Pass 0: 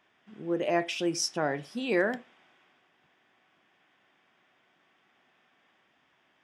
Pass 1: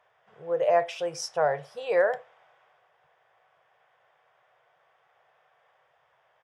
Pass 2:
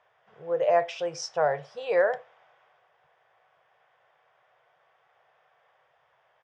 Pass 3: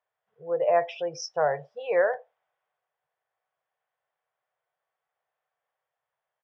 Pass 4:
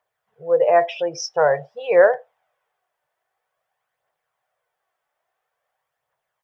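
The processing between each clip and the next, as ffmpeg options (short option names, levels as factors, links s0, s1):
-af "firequalizer=gain_entry='entry(140,0);entry(240,-30);entry(480,8);entry(2500,-5)':delay=0.05:min_phase=1"
-af "lowpass=f=6800:w=0.5412,lowpass=f=6800:w=1.3066"
-af "afftdn=nr=20:nf=-40"
-af "aphaser=in_gain=1:out_gain=1:delay=3.5:decay=0.36:speed=0.49:type=triangular,volume=2.24"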